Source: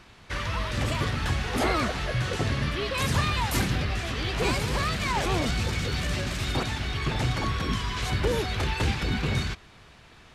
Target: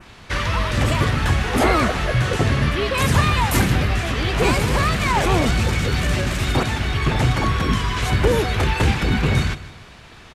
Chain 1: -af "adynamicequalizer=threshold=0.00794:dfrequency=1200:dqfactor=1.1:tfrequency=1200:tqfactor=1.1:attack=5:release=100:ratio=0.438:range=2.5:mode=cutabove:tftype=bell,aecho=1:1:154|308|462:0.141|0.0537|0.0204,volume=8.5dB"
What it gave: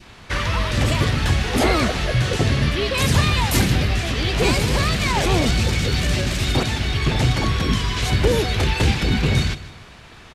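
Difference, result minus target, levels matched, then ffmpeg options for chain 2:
1000 Hz band -3.5 dB
-af "adynamicequalizer=threshold=0.00794:dfrequency=4500:dqfactor=1.1:tfrequency=4500:tqfactor=1.1:attack=5:release=100:ratio=0.438:range=2.5:mode=cutabove:tftype=bell,aecho=1:1:154|308|462:0.141|0.0537|0.0204,volume=8.5dB"

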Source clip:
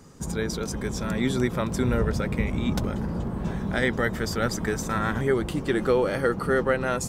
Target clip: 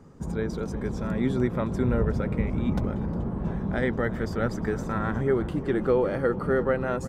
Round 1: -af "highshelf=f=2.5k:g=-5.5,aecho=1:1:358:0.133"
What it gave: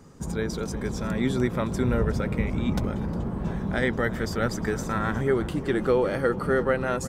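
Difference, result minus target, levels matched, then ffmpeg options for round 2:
4000 Hz band +7.0 dB
-af "highshelf=f=2.5k:g=-17,aecho=1:1:358:0.133"

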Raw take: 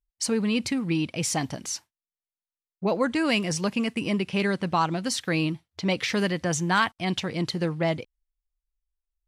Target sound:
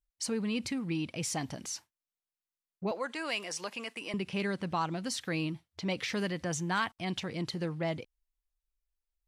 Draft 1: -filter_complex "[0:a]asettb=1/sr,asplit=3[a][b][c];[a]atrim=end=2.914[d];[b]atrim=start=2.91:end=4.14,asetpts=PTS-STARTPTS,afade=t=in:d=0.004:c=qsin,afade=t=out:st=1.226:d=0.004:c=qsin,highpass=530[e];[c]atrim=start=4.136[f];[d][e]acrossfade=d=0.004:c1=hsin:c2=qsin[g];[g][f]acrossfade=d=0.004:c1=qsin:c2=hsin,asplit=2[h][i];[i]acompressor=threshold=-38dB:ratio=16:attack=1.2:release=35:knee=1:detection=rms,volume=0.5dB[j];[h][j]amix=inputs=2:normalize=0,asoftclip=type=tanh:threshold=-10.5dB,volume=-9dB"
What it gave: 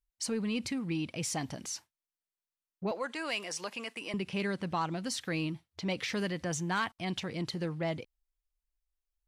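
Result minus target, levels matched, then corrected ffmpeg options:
soft clip: distortion +13 dB
-filter_complex "[0:a]asettb=1/sr,asplit=3[a][b][c];[a]atrim=end=2.914[d];[b]atrim=start=2.91:end=4.14,asetpts=PTS-STARTPTS,afade=t=in:d=0.004:c=qsin,afade=t=out:st=1.226:d=0.004:c=qsin,highpass=530[e];[c]atrim=start=4.136[f];[d][e]acrossfade=d=0.004:c1=hsin:c2=qsin[g];[g][f]acrossfade=d=0.004:c1=qsin:c2=hsin,asplit=2[h][i];[i]acompressor=threshold=-38dB:ratio=16:attack=1.2:release=35:knee=1:detection=rms,volume=0.5dB[j];[h][j]amix=inputs=2:normalize=0,asoftclip=type=tanh:threshold=-3dB,volume=-9dB"

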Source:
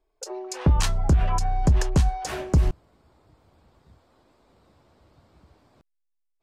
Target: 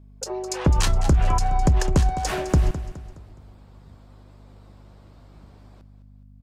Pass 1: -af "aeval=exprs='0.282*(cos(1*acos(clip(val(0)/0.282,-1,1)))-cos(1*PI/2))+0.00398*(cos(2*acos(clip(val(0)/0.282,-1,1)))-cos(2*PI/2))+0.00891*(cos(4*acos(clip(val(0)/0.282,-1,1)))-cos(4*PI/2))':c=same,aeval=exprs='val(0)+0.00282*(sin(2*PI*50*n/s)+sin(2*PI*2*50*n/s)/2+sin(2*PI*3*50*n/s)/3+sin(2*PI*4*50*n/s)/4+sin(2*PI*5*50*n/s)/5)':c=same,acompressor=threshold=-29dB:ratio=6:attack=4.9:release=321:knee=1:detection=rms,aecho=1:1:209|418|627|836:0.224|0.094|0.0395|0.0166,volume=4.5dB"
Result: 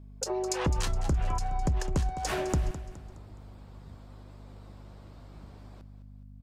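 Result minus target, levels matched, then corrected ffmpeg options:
compressor: peak gain reduction +9.5 dB
-af "aeval=exprs='0.282*(cos(1*acos(clip(val(0)/0.282,-1,1)))-cos(1*PI/2))+0.00398*(cos(2*acos(clip(val(0)/0.282,-1,1)))-cos(2*PI/2))+0.00891*(cos(4*acos(clip(val(0)/0.282,-1,1)))-cos(4*PI/2))':c=same,aeval=exprs='val(0)+0.00282*(sin(2*PI*50*n/s)+sin(2*PI*2*50*n/s)/2+sin(2*PI*3*50*n/s)/3+sin(2*PI*4*50*n/s)/4+sin(2*PI*5*50*n/s)/5)':c=same,acompressor=threshold=-17.5dB:ratio=6:attack=4.9:release=321:knee=1:detection=rms,aecho=1:1:209|418|627|836:0.224|0.094|0.0395|0.0166,volume=4.5dB"

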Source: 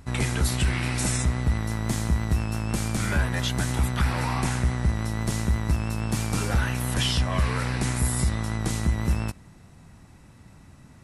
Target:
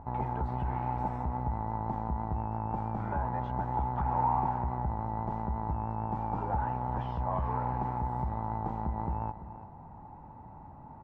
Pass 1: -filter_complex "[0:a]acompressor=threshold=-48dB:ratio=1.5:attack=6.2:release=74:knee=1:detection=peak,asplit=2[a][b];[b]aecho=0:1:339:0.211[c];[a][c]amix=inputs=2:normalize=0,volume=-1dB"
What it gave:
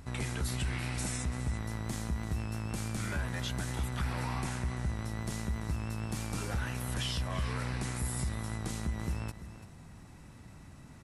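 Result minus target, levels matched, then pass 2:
1000 Hz band -11.0 dB
-filter_complex "[0:a]acompressor=threshold=-48dB:ratio=1.5:attack=6.2:release=74:knee=1:detection=peak,lowpass=f=870:t=q:w=10,asplit=2[a][b];[b]aecho=0:1:339:0.211[c];[a][c]amix=inputs=2:normalize=0,volume=-1dB"

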